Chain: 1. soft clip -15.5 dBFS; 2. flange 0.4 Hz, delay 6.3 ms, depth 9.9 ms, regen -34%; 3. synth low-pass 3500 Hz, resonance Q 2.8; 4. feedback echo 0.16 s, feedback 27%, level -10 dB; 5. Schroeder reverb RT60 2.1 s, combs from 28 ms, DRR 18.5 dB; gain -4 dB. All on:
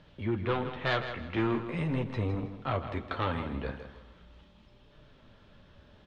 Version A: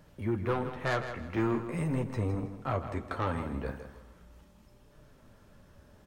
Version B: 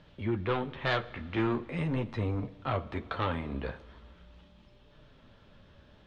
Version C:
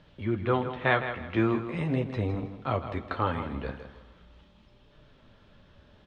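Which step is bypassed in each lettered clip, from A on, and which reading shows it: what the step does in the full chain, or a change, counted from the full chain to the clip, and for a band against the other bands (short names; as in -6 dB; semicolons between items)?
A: 3, 4 kHz band -7.0 dB; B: 4, echo-to-direct -9.0 dB to -18.5 dB; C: 1, distortion -10 dB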